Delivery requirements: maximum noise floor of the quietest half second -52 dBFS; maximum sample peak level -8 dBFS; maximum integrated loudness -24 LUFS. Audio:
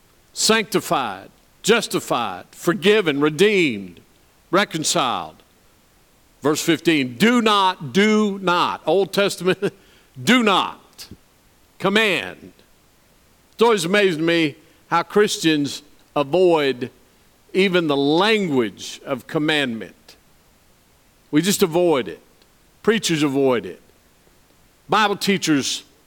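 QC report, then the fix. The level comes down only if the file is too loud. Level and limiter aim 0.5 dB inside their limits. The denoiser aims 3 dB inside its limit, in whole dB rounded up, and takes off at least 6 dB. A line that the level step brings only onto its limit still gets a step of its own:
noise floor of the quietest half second -56 dBFS: pass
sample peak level -3.0 dBFS: fail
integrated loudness -19.0 LUFS: fail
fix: trim -5.5 dB

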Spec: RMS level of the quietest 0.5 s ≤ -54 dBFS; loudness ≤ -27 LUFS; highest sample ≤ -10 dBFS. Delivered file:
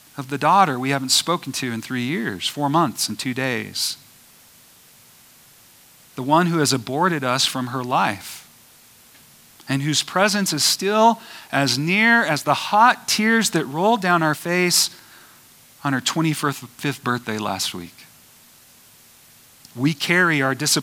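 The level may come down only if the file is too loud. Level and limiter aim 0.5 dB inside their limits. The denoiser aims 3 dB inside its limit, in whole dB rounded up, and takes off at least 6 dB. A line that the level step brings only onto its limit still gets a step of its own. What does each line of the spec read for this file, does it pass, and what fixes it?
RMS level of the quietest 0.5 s -50 dBFS: fail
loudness -19.5 LUFS: fail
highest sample -2.0 dBFS: fail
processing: trim -8 dB; peak limiter -10.5 dBFS

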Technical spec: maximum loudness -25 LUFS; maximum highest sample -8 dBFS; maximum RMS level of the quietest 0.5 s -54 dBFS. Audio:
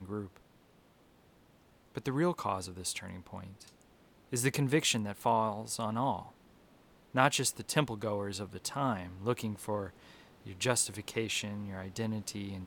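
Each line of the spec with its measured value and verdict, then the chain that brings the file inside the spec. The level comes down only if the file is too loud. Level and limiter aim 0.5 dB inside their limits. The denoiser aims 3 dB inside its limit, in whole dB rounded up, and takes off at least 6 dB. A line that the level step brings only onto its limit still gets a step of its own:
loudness -33.5 LUFS: pass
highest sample -10.0 dBFS: pass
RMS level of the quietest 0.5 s -64 dBFS: pass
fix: none needed

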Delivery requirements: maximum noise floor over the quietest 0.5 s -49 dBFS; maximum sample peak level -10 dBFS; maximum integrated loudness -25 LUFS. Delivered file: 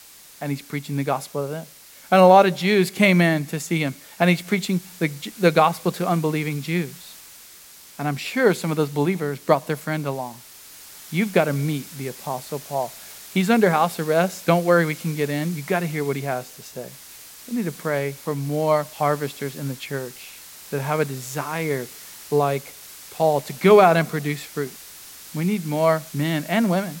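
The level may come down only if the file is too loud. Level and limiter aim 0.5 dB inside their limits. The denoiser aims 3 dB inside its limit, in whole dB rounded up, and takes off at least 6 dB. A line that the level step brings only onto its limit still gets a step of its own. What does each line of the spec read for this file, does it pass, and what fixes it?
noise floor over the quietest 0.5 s -46 dBFS: fail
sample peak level -2.5 dBFS: fail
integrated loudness -22.0 LUFS: fail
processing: trim -3.5 dB; peak limiter -10.5 dBFS

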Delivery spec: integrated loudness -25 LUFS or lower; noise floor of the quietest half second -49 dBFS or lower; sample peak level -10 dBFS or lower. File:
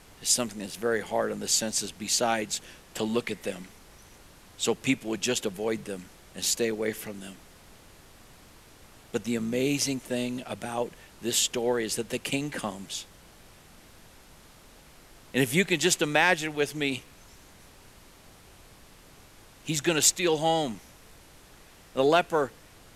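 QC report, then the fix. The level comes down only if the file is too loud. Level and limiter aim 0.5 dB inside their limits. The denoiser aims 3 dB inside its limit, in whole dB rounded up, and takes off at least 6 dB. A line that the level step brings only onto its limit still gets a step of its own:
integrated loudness -27.5 LUFS: pass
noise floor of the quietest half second -53 dBFS: pass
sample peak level -8.0 dBFS: fail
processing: peak limiter -10.5 dBFS

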